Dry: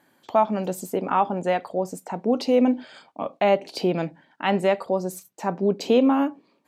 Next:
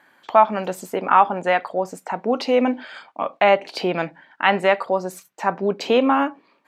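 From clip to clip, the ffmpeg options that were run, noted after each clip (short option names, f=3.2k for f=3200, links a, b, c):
-af "equalizer=f=1.6k:t=o:w=2.8:g=14.5,volume=-4dB"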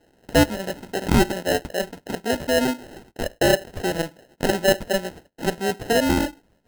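-af "acrusher=samples=38:mix=1:aa=0.000001,volume=-2.5dB"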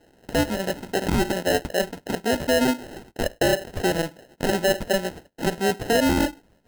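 -af "alimiter=limit=-15.5dB:level=0:latency=1:release=40,volume=2.5dB"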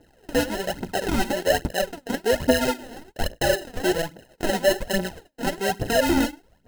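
-af "aphaser=in_gain=1:out_gain=1:delay=4.4:decay=0.66:speed=1.2:type=triangular,volume=-2.5dB"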